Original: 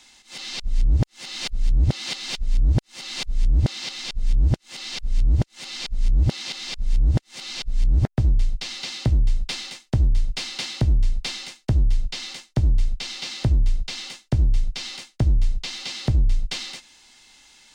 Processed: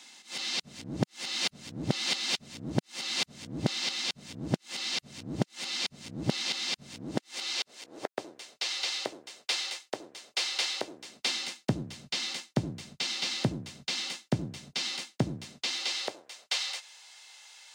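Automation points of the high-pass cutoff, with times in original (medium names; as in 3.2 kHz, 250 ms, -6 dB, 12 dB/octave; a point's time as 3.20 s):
high-pass 24 dB/octave
6.89 s 170 Hz
7.80 s 400 Hz
10.84 s 400 Hz
11.60 s 160 Hz
15.40 s 160 Hz
16.20 s 530 Hz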